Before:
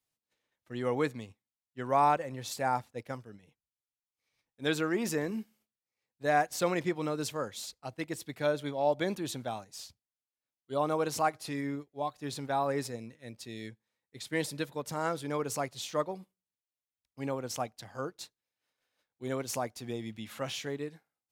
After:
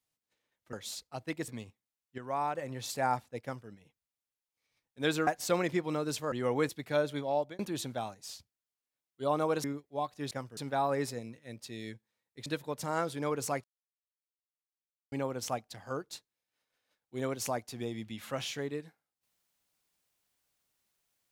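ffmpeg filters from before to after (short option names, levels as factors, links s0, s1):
-filter_complex "[0:a]asplit=15[s0][s1][s2][s3][s4][s5][s6][s7][s8][s9][s10][s11][s12][s13][s14];[s0]atrim=end=0.732[s15];[s1]atrim=start=7.438:end=8.192[s16];[s2]atrim=start=1.098:end=1.802[s17];[s3]atrim=start=1.798:end=2.172,asetpts=PTS-STARTPTS,volume=0.398[s18];[s4]atrim=start=2.168:end=4.892[s19];[s5]atrim=start=6.388:end=7.442[s20];[s6]atrim=start=0.728:end=1.102[s21];[s7]atrim=start=8.188:end=9.09,asetpts=PTS-STARTPTS,afade=t=out:st=0.592:d=0.31[s22];[s8]atrim=start=9.09:end=11.142,asetpts=PTS-STARTPTS,afade=t=in:d=0.004:c=hsin[s23];[s9]atrim=start=11.668:end=12.342[s24];[s10]atrim=start=3.048:end=3.312[s25];[s11]atrim=start=12.338:end=14.232[s26];[s12]atrim=start=14.538:end=15.72,asetpts=PTS-STARTPTS,afade=t=out:st=1.178:d=0.004:c=hsin[s27];[s13]atrim=start=15.72:end=17.2,asetpts=PTS-STARTPTS,volume=0[s28];[s14]atrim=start=17.2,asetpts=PTS-STARTPTS,afade=t=in:d=0.004:c=hsin[s29];[s15][s16]acrossfade=d=0.004:c1=hsin:c2=hsin[s30];[s30][s17]acrossfade=d=0.004:c1=hsin:c2=hsin[s31];[s31][s18]acrossfade=d=0.004:c1=hsin:c2=hsin[s32];[s32][s19]acrossfade=d=0.004:c1=hsin:c2=hsin[s33];[s33][s20]acrossfade=d=0.004:c1=hsin:c2=hsin[s34];[s34][s21]acrossfade=d=0.004:c1=hsin:c2=hsin[s35];[s22][s23]concat=n=2:v=0:a=1[s36];[s35][s36]acrossfade=d=0.004:c1=hsin:c2=hsin[s37];[s37][s24]acrossfade=d=0.004:c1=hsin:c2=hsin[s38];[s38][s25]acrossfade=d=0.004:c1=hsin:c2=hsin[s39];[s39][s26]acrossfade=d=0.004:c1=hsin:c2=hsin[s40];[s27][s28][s29]concat=n=3:v=0:a=1[s41];[s40][s41]acrossfade=d=0.004:c1=hsin:c2=hsin"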